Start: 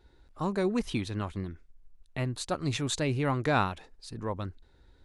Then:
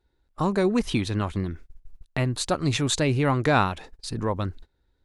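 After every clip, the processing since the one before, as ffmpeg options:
-filter_complex "[0:a]agate=range=-21dB:threshold=-50dB:ratio=16:detection=peak,asplit=2[a][b];[b]acompressor=threshold=-37dB:ratio=6,volume=2dB[c];[a][c]amix=inputs=2:normalize=0,volume=3.5dB"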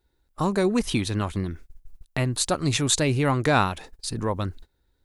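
-af "highshelf=f=7.5k:g=11.5"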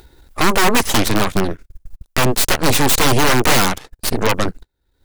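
-af "aeval=exprs='(mod(6.68*val(0)+1,2)-1)/6.68':c=same,aeval=exprs='0.158*(cos(1*acos(clip(val(0)/0.158,-1,1)))-cos(1*PI/2))+0.00631*(cos(3*acos(clip(val(0)/0.158,-1,1)))-cos(3*PI/2))+0.00112*(cos(5*acos(clip(val(0)/0.158,-1,1)))-cos(5*PI/2))+0.0794*(cos(6*acos(clip(val(0)/0.158,-1,1)))-cos(6*PI/2))+0.0158*(cos(7*acos(clip(val(0)/0.158,-1,1)))-cos(7*PI/2))':c=same,acompressor=mode=upward:threshold=-29dB:ratio=2.5,volume=6.5dB"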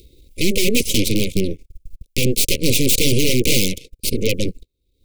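-af "asuperstop=centerf=1100:order=20:qfactor=0.67,volume=-1dB"

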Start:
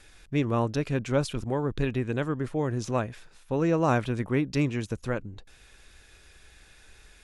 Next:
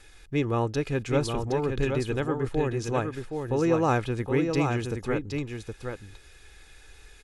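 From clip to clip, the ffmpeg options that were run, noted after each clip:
-af "aecho=1:1:2.4:0.37,aecho=1:1:768:0.531"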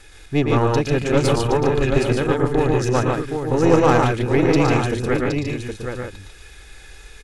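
-af "aecho=1:1:113.7|145.8:0.562|0.631,aeval=exprs='0.376*(cos(1*acos(clip(val(0)/0.376,-1,1)))-cos(1*PI/2))+0.0335*(cos(6*acos(clip(val(0)/0.376,-1,1)))-cos(6*PI/2))':c=same,volume=6.5dB"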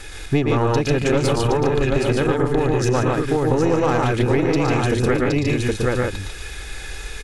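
-filter_complex "[0:a]asplit=2[a][b];[b]alimiter=limit=-12dB:level=0:latency=1,volume=-2dB[c];[a][c]amix=inputs=2:normalize=0,acompressor=threshold=-20dB:ratio=6,volume=5dB"

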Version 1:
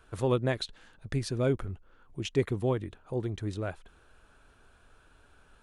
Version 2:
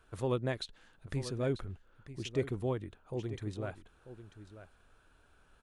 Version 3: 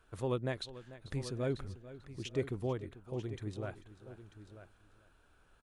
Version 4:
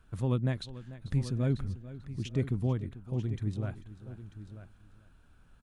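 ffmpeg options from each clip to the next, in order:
-af "aecho=1:1:941:0.224,volume=-5.5dB"
-af "aecho=1:1:442|884|1326:0.158|0.0412|0.0107,volume=-2dB"
-af "lowshelf=f=290:t=q:w=1.5:g=8.5"

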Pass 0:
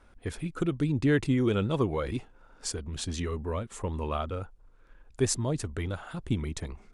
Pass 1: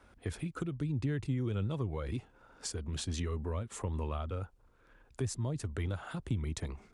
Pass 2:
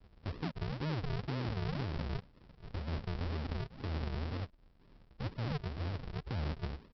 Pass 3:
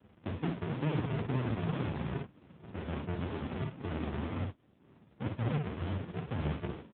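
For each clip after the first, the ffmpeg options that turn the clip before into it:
-filter_complex "[0:a]highpass=50,acrossover=split=130[a][b];[b]acompressor=threshold=-37dB:ratio=6[c];[a][c]amix=inputs=2:normalize=0"
-af "alimiter=level_in=7.5dB:limit=-24dB:level=0:latency=1:release=14,volume=-7.5dB,aresample=11025,acrusher=samples=28:mix=1:aa=0.000001:lfo=1:lforange=28:lforate=2,aresample=44100,volume=1.5dB"
-filter_complex "[0:a]asplit=2[a][b];[b]aecho=0:1:34|54:0.188|0.596[c];[a][c]amix=inputs=2:normalize=0,volume=4.5dB" -ar 8000 -c:a libopencore_amrnb -b:a 5900

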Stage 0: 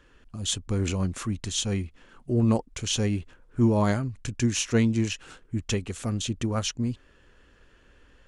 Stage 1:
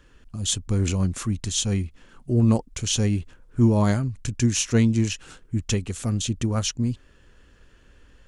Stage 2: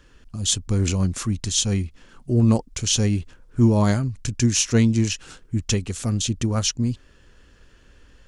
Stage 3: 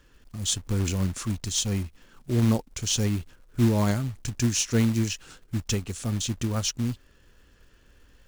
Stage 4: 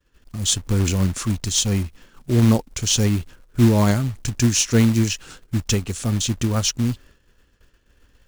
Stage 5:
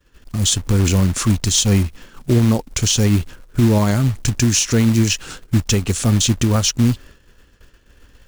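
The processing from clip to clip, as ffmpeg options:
-af "bass=f=250:g=5,treble=f=4k:g=5"
-af "equalizer=f=5.1k:w=1.6:g=4,volume=1.5dB"
-af "acrusher=bits=4:mode=log:mix=0:aa=0.000001,volume=-5dB"
-af "agate=range=-33dB:threshold=-48dB:ratio=3:detection=peak,volume=6.5dB"
-af "alimiter=limit=-14.5dB:level=0:latency=1:release=119,volume=8dB"

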